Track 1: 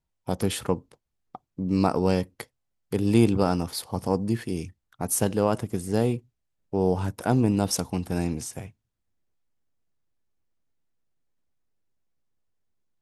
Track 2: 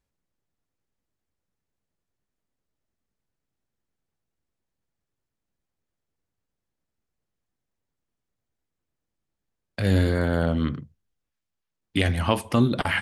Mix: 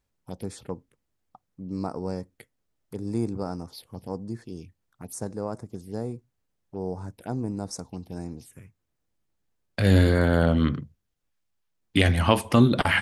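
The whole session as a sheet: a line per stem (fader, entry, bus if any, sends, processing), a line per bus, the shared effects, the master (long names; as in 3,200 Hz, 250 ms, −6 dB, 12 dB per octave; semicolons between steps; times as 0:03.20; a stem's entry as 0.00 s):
−8.5 dB, 0.00 s, no send, phaser swept by the level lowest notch 320 Hz, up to 3,000 Hz, full sweep at −22.5 dBFS
+2.5 dB, 0.00 s, no send, no processing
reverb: not used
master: no processing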